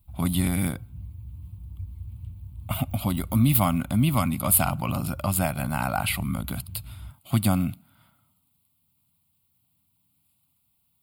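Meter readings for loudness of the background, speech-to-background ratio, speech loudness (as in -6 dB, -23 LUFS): -41.0 LUFS, 16.0 dB, -25.0 LUFS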